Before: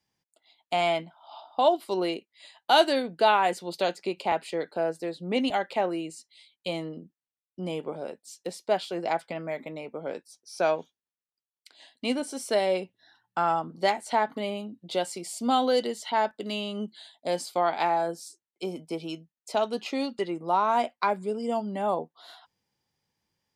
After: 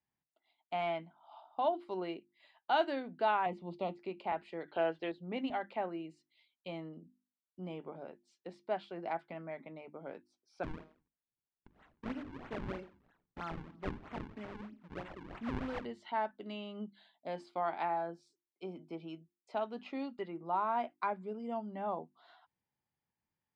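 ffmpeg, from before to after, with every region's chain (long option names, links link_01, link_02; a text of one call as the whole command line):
ffmpeg -i in.wav -filter_complex "[0:a]asettb=1/sr,asplit=3[link_01][link_02][link_03];[link_01]atrim=end=3.464[link_04];[link_02]atrim=start=3.46:end=3.99,asetpts=PTS-STARTPTS,afade=type=in:duration=0.004:curve=qsin,afade=type=out:start_time=0.526:duration=0.004:curve=qsin,asuperstop=centerf=1600:order=4:qfactor=1.9,bass=frequency=250:gain=9,treble=frequency=4000:gain=-9[link_05];[link_03]atrim=start=3.986[link_06];[link_04][link_05]acrossfade=duration=0.004:curve1=hsin:curve2=qsin[link_07];[link_07][link_06]acrossfade=duration=0.004:curve1=qsin:curve2=hsin,asettb=1/sr,asplit=3[link_08][link_09][link_10];[link_08]atrim=end=4.684[link_11];[link_09]atrim=start=4.68:end=5.12,asetpts=PTS-STARTPTS,afade=type=in:duration=0.004:curve=qsin,afade=type=out:start_time=0.436:duration=0.004:curve=qsin,equalizer=frequency=200:width_type=o:width=0.51:gain=-11.5,acontrast=57,lowpass=frequency=3200:width_type=q:width=12[link_12];[link_10]atrim=start=5.116[link_13];[link_11][link_12]acrossfade=duration=0.004:curve1=hsin:curve2=qsin[link_14];[link_14][link_13]acrossfade=duration=0.004:curve1=qsin:curve2=hsin,asettb=1/sr,asplit=3[link_15][link_16][link_17];[link_15]atrim=end=10.634[link_18];[link_16]atrim=start=10.63:end=15.85,asetpts=PTS-STARTPTS,afade=type=in:duration=0.004:curve=qsin,afade=type=out:start_time=5.216:duration=0.004:curve=qsin,equalizer=frequency=770:width=1.2:gain=-11.5,aecho=1:1:89|178|267:0.2|0.0519|0.0135,atrim=end_sample=230202,acrusher=samples=40:mix=1:aa=0.000001:lfo=1:lforange=64:lforate=3.1[link_19];[link_17]atrim=start=15.846[link_20];[link_18][link_19]acrossfade=duration=0.004:curve1=hsin:curve2=qsin[link_21];[link_21][link_20]acrossfade=duration=0.004:curve1=qsin:curve2=hsin,lowpass=2200,equalizer=frequency=490:width=2.6:gain=-5.5,bandreject=frequency=50:width_type=h:width=6,bandreject=frequency=100:width_type=h:width=6,bandreject=frequency=150:width_type=h:width=6,bandreject=frequency=200:width_type=h:width=6,bandreject=frequency=250:width_type=h:width=6,bandreject=frequency=300:width_type=h:width=6,bandreject=frequency=350:width_type=h:width=6,volume=-8.5dB" out.wav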